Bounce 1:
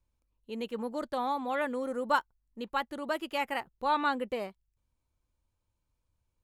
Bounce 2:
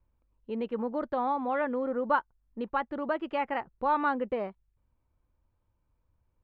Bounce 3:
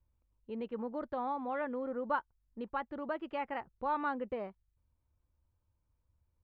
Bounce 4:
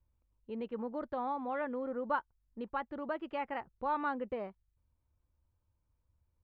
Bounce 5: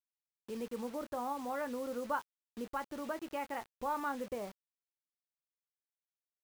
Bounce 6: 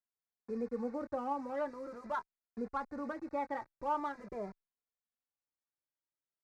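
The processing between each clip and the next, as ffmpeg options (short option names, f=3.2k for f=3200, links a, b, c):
-filter_complex "[0:a]lowpass=1.7k,asplit=2[a][b];[b]acompressor=threshold=-38dB:ratio=6,volume=0dB[c];[a][c]amix=inputs=2:normalize=0"
-af "equalizer=f=78:w=1.4:g=7.5,volume=-7dB"
-af anull
-filter_complex "[0:a]asplit=2[a][b];[b]acompressor=threshold=-45dB:ratio=5,volume=-1dB[c];[a][c]amix=inputs=2:normalize=0,asplit=2[d][e];[e]adelay=25,volume=-13dB[f];[d][f]amix=inputs=2:normalize=0,acrusher=bits=7:mix=0:aa=0.000001,volume=-4dB"
-filter_complex "[0:a]asuperstop=centerf=3100:order=4:qfactor=1.5,adynamicsmooth=sensitivity=6:basefreq=2.6k,asplit=2[a][b];[b]adelay=2.5,afreqshift=0.45[c];[a][c]amix=inputs=2:normalize=1,volume=3.5dB"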